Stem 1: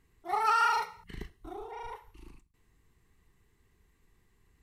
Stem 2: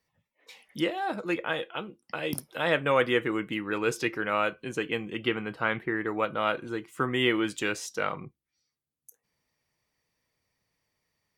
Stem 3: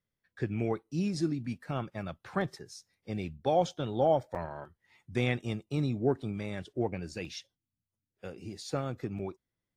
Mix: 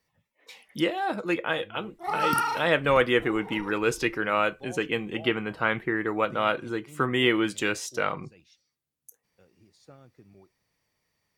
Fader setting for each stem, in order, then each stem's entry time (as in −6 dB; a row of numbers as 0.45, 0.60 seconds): 0.0, +2.5, −18.0 decibels; 1.75, 0.00, 1.15 seconds